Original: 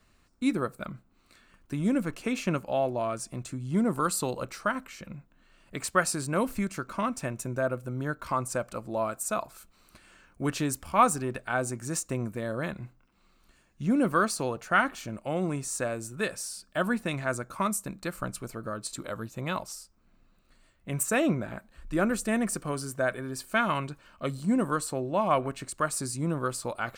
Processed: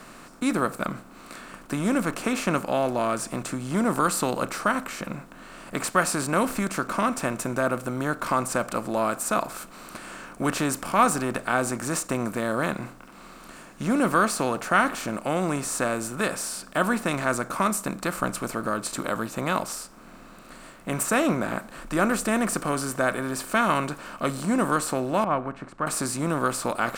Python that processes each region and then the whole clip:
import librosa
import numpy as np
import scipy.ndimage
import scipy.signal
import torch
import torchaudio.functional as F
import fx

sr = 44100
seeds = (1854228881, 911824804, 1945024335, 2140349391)

y = fx.chain(x, sr, fx.lowpass(hz=1100.0, slope=12),
    fx.peak_eq(hz=450.0, db=-6.0, octaves=1.8),
    fx.upward_expand(threshold_db=-37.0, expansion=1.5), at=(25.24, 25.87))
y = fx.bin_compress(y, sr, power=0.6)
y = fx.peak_eq(y, sr, hz=72.0, db=-14.0, octaves=0.74)